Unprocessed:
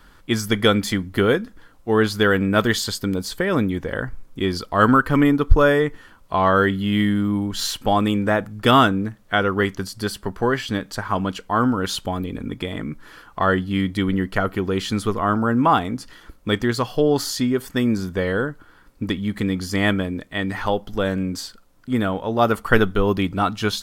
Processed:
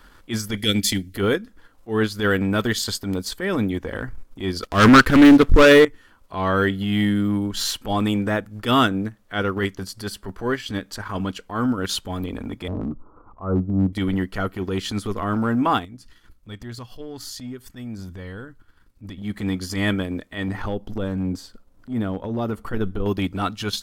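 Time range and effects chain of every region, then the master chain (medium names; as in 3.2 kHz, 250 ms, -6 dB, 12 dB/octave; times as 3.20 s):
0.57–1.16 s: Butterworth band-stop 910 Hz, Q 0.57 + treble shelf 2.4 kHz +7.5 dB
4.63–5.85 s: waveshaping leveller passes 3 + upward compressor, threshold -27 dBFS + loudspeaker Doppler distortion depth 0.25 ms
12.68–13.93 s: steep low-pass 1.3 kHz 96 dB/octave + bass shelf 250 Hz +6.5 dB + slow attack 119 ms
15.85–19.22 s: compression 2:1, threshold -29 dBFS + FFT filter 120 Hz 0 dB, 370 Hz -10 dB, 560 Hz -13 dB, 3.9 kHz -6 dB
20.48–23.06 s: tilt shelf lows +5.5 dB, about 670 Hz + compression 2:1, threshold -22 dBFS
whole clip: dynamic bell 830 Hz, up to -6 dB, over -31 dBFS, Q 0.74; transient shaper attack -11 dB, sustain -7 dB; peaking EQ 150 Hz -12 dB 0.29 oct; trim +2 dB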